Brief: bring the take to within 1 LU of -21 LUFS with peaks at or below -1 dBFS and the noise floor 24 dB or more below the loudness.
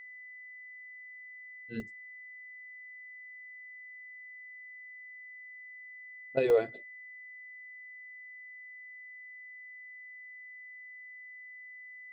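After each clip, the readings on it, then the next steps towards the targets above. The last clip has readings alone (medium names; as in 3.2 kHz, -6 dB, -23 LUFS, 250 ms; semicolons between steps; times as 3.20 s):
dropouts 2; longest dropout 1.2 ms; steady tone 2 kHz; tone level -46 dBFS; loudness -40.5 LUFS; peak level -15.5 dBFS; loudness target -21.0 LUFS
-> interpolate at 1.80/6.50 s, 1.2 ms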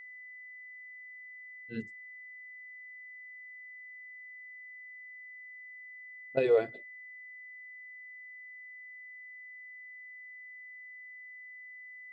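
dropouts 0; steady tone 2 kHz; tone level -46 dBFS
-> band-stop 2 kHz, Q 30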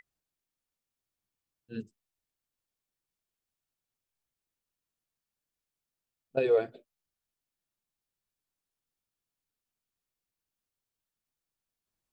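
steady tone not found; loudness -29.0 LUFS; peak level -15.5 dBFS; loudness target -21.0 LUFS
-> trim +8 dB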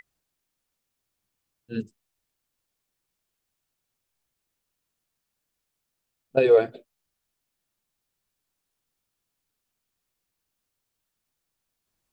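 loudness -21.0 LUFS; peak level -7.5 dBFS; noise floor -82 dBFS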